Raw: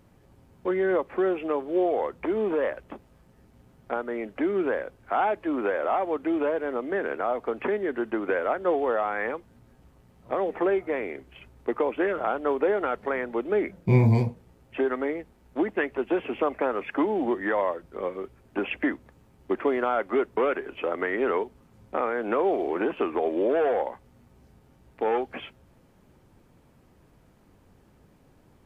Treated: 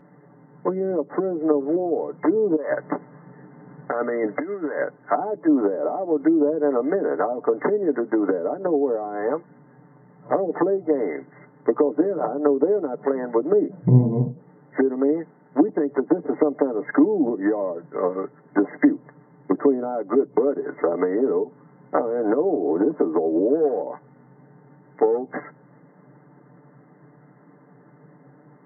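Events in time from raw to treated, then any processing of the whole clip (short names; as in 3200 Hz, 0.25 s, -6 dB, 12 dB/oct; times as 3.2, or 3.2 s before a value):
2.56–4.84 negative-ratio compressor -34 dBFS
whole clip: treble ducked by the level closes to 370 Hz, closed at -22.5 dBFS; FFT band-pass 120–2100 Hz; comb 6.8 ms, depth 62%; gain +7.5 dB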